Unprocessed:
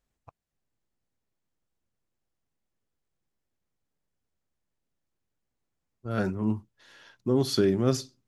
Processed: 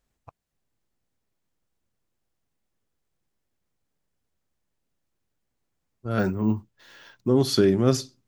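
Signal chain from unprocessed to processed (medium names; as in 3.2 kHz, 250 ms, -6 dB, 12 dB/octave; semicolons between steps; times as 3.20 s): 6.19–7.27 s: careless resampling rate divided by 2×, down filtered, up hold; trim +4 dB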